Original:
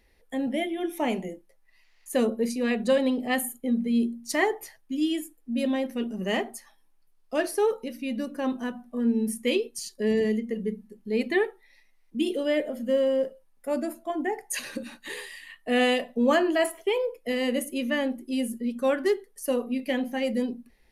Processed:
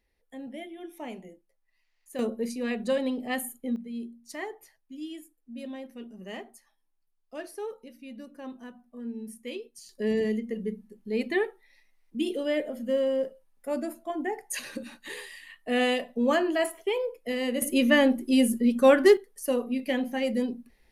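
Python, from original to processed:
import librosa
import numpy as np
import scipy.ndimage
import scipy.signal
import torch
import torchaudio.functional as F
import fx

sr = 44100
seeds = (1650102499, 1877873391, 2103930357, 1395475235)

y = fx.gain(x, sr, db=fx.steps((0.0, -12.0), (2.19, -4.5), (3.76, -12.5), (9.89, -2.5), (17.62, 6.5), (19.17, -0.5)))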